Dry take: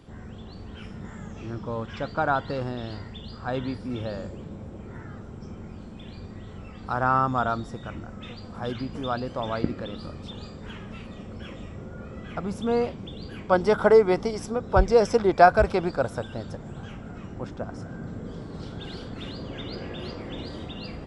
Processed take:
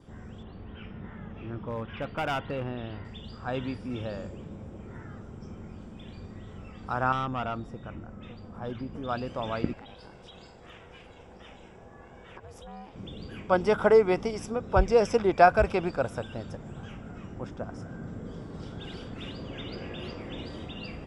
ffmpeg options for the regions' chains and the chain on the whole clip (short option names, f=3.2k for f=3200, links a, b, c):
-filter_complex "[0:a]asettb=1/sr,asplit=3[a][b][c];[a]atrim=end=0.434[d];[b]atrim=start=0.43:end=3.05,asetpts=PTS-STARTPTS,afade=t=in:d=0.004:c=qsin,afade=t=out:st=2.616:d=0.004:c=qsin,lowpass=f=3.4k:w=0.5412,lowpass=f=3.4k:w=1.3066,asoftclip=type=hard:threshold=-23dB[e];[c]atrim=start=3.046[f];[d][e]acrossfade=d=0.004:c1=hsin:c2=qsin[g];[g][f]acrossfade=d=0.004:c1=qsin:c2=hsin,asettb=1/sr,asplit=3[h][i][j];[h]atrim=end=7.124[k];[i]atrim=start=7.12:end=9.09,asetpts=PTS-STARTPTS,afade=t=in:d=0.004:c=qsin,afade=t=out:st=1.966:d=0.004:c=qsin,highshelf=f=2.2k:g=-10,aeval=exprs='(tanh(12.6*val(0)+0.3)-tanh(0.3))/12.6':c=same[l];[j]atrim=start=9.086[m];[k][l]acrossfade=d=0.004:c1=hsin:c2=qsin[n];[n][m]acrossfade=d=0.004:c1=qsin:c2=hsin,asettb=1/sr,asplit=3[o][p][q];[o]atrim=end=9.734[r];[p]atrim=start=9.73:end=12.96,asetpts=PTS-STARTPTS,afade=t=in:d=0.004:c=qsin,afade=t=out:st=3.226:d=0.004:c=qsin,lowshelf=f=220:g=-10,acompressor=threshold=-37dB:ratio=4:attack=3.2:release=140:knee=1:detection=peak,aeval=exprs='val(0)*sin(2*PI*280*n/s)':c=same[s];[q]atrim=start=12.956[t];[r][s]acrossfade=d=0.004:c1=hsin:c2=qsin[u];[u][t]acrossfade=d=0.004:c1=qsin:c2=hsin,bandreject=f=4.2k:w=6.5,adynamicequalizer=threshold=0.00224:dfrequency=2600:dqfactor=3.7:tfrequency=2600:tqfactor=3.7:attack=5:release=100:ratio=0.375:range=3.5:mode=boostabove:tftype=bell,volume=-3dB"